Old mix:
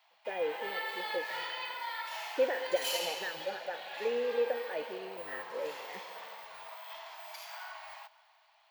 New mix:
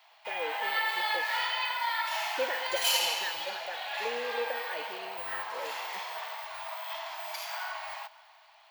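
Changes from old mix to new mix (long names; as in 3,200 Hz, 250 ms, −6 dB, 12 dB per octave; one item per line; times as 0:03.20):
speech: add tilt shelving filter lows −6 dB, about 1,200 Hz
background +8.0 dB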